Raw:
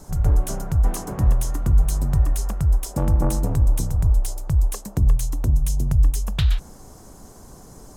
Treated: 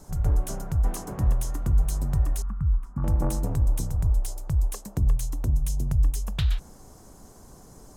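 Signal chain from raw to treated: 2.42–3.04 EQ curve 240 Hz 0 dB, 420 Hz -22 dB, 600 Hz -23 dB, 1200 Hz +1 dB, 3600 Hz -27 dB; gain -5 dB

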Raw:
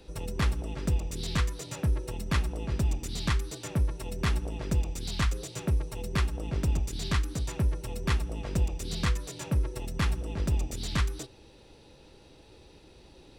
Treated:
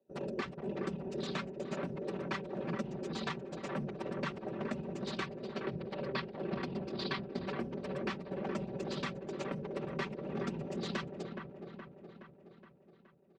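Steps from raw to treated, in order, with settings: Wiener smoothing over 41 samples; whisperiser; HPF 330 Hz 12 dB/oct; compressor 10:1, threshold -42 dBFS, peak gain reduction 14.5 dB; 5.26–7.56 resonant high shelf 5600 Hz -7 dB, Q 3; gate -52 dBFS, range -24 dB; air absorption 150 m; comb 5.2 ms; dark delay 0.42 s, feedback 57%, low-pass 1900 Hz, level -6 dB; gain +6.5 dB

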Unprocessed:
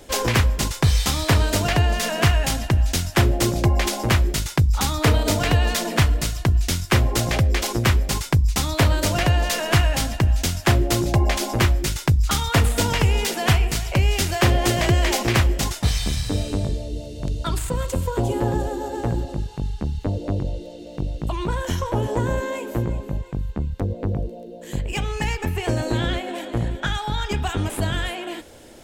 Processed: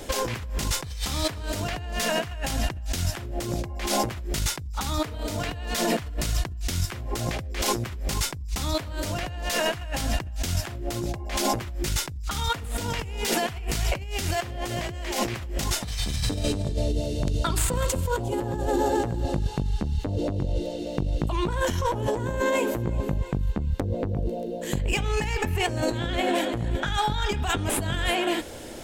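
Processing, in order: 17.27–18.01 low shelf 130 Hz -4 dB; negative-ratio compressor -28 dBFS, ratio -1

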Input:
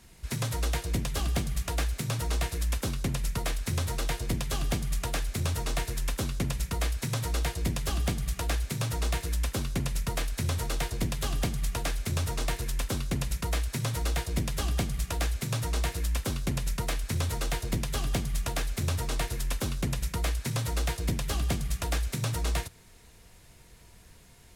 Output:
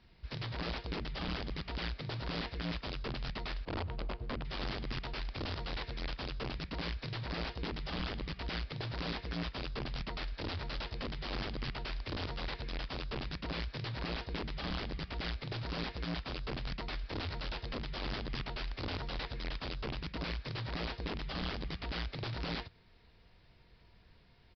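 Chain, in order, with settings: 3.65–4.45 median filter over 25 samples; wrapped overs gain 24.5 dB; downsampling 11025 Hz; gain -7.5 dB

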